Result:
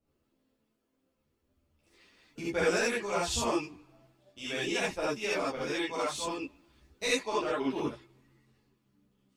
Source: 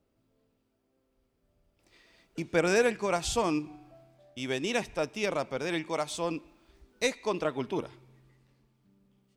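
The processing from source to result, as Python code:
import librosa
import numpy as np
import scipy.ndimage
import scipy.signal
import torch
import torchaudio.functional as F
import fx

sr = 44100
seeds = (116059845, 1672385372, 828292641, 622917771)

y = fx.hpss(x, sr, part='harmonic', gain_db=-9)
y = fx.rev_gated(y, sr, seeds[0], gate_ms=100, shape='rising', drr_db=-6.5)
y = fx.ensemble(y, sr)
y = F.gain(torch.from_numpy(y), -1.5).numpy()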